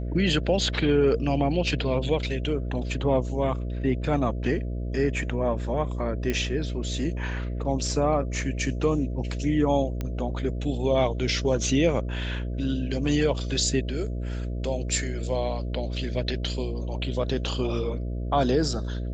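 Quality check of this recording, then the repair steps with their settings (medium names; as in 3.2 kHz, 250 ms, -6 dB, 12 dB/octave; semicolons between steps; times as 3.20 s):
buzz 60 Hz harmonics 11 -30 dBFS
6.30 s: pop -14 dBFS
10.01 s: pop -17 dBFS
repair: de-click; de-hum 60 Hz, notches 11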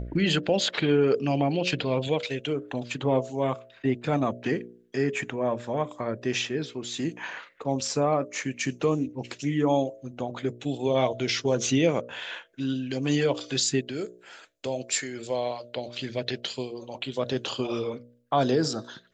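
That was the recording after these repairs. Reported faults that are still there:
10.01 s: pop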